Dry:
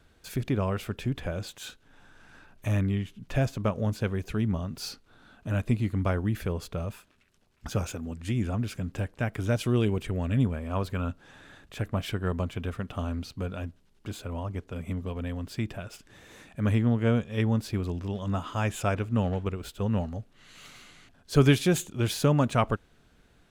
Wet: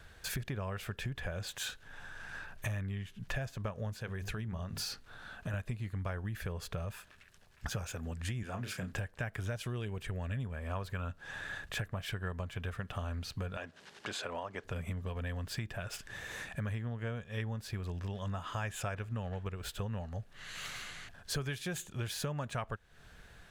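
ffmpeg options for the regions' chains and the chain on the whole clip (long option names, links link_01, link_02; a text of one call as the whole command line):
ffmpeg -i in.wav -filter_complex "[0:a]asettb=1/sr,asplit=3[link_01][link_02][link_03];[link_01]atrim=end=3.994[link_04];[link_02]atrim=start=3.99:end=5.54,asetpts=PTS-STARTPTS,afade=type=in:duration=0.004:curve=qsin,afade=type=out:start_time=1.546:duration=0.004:curve=qsin,bandreject=frequency=50:width_type=h:width=6,bandreject=frequency=100:width_type=h:width=6,bandreject=frequency=150:width_type=h:width=6,bandreject=frequency=200:width_type=h:width=6,bandreject=frequency=250:width_type=h:width=6,bandreject=frequency=300:width_type=h:width=6,bandreject=frequency=350:width_type=h:width=6,bandreject=frequency=400:width_type=h:width=6,acompressor=threshold=-35dB:ratio=2:attack=3.2:release=140:knee=1:detection=peak[link_05];[link_03]atrim=start=5.536[link_06];[link_04][link_05]acrossfade=duration=0.004:curve1=hsin:curve2=qsin[link_07];[link_07][link_06]acrossfade=duration=0.004:curve1=qsin:curve2=hsin,asettb=1/sr,asplit=3[link_08][link_09][link_10];[link_08]atrim=end=8.434[link_11];[link_09]atrim=start=8.43:end=8.93,asetpts=PTS-STARTPTS,afade=type=in:duration=0.004:curve=qsin,afade=type=out:start_time=0.496:duration=0.004:curve=qsin,highpass=160,asplit=2[link_12][link_13];[link_13]adelay=32,volume=-7dB[link_14];[link_12][link_14]amix=inputs=2:normalize=0,atrim=end_sample=22050[link_15];[link_10]atrim=start=8.926[link_16];[link_11][link_15]acrossfade=duration=0.004:curve1=hsin:curve2=qsin[link_17];[link_17][link_16]acrossfade=duration=0.004:curve1=qsin:curve2=hsin,asettb=1/sr,asplit=3[link_18][link_19][link_20];[link_18]atrim=end=13.574[link_21];[link_19]atrim=start=13.57:end=14.64,asetpts=PTS-STARTPTS,afade=type=in:duration=0.004:curve=qsin,afade=type=out:start_time=1.066:duration=0.004:curve=qsin,acompressor=mode=upward:threshold=-35dB:ratio=2.5:attack=3.2:release=140:knee=2.83:detection=peak,highpass=300,lowpass=6700[link_22];[link_20]atrim=start=14.636[link_23];[link_21][link_22]acrossfade=duration=0.004:curve1=hsin:curve2=qsin[link_24];[link_24][link_23]acrossfade=duration=0.004:curve1=qsin:curve2=hsin,equalizer=frequency=280:width_type=o:width=1:gain=-10.5,acompressor=threshold=-42dB:ratio=6,equalizer=frequency=1700:width_type=o:width=0.22:gain=8,volume=6dB" out.wav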